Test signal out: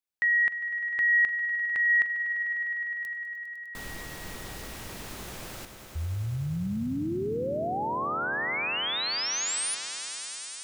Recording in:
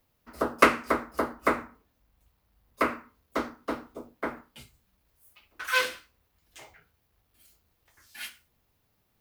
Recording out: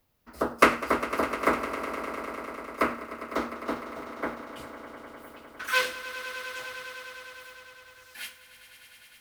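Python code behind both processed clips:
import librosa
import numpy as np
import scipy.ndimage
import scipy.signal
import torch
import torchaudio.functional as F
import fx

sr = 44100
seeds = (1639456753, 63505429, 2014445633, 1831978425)

y = fx.echo_swell(x, sr, ms=101, loudest=5, wet_db=-15.0)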